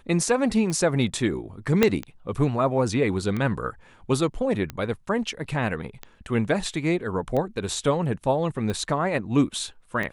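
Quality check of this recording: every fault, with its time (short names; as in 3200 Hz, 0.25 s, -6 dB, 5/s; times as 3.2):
tick 45 rpm -17 dBFS
1.83 pop -4 dBFS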